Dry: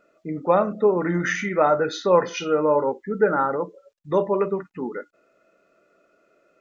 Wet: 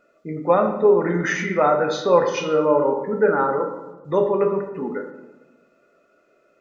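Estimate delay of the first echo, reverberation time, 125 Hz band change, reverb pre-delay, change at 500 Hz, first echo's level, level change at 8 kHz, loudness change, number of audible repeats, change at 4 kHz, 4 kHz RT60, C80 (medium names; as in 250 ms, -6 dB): no echo, 1.2 s, +1.5 dB, 6 ms, +2.5 dB, no echo, no reading, +2.0 dB, no echo, +1.5 dB, 0.65 s, 9.5 dB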